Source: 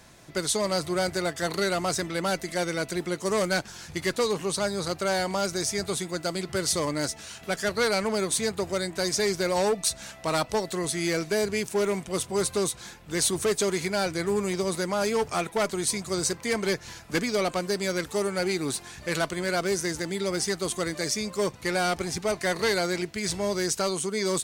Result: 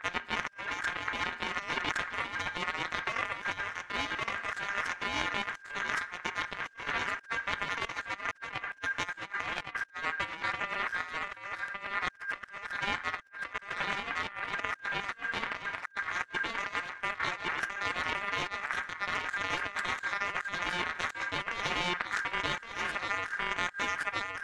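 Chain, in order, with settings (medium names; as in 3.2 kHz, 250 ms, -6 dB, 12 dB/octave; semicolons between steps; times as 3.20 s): tracing distortion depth 0.044 ms; low-pass 5.2 kHz 12 dB/octave; tilt EQ -3.5 dB/octave; hum notches 60/120/180/240/300/360/420/480/540 Hz; Chebyshev shaper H 2 -9 dB, 6 -31 dB, 7 -16 dB, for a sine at -6 dBFS; reverse echo 1116 ms -3 dB; reverberation RT60 0.85 s, pre-delay 6 ms, DRR 14 dB; compressor with a negative ratio -30 dBFS, ratio -0.5; ring modulator 1.6 kHz; trim -2.5 dB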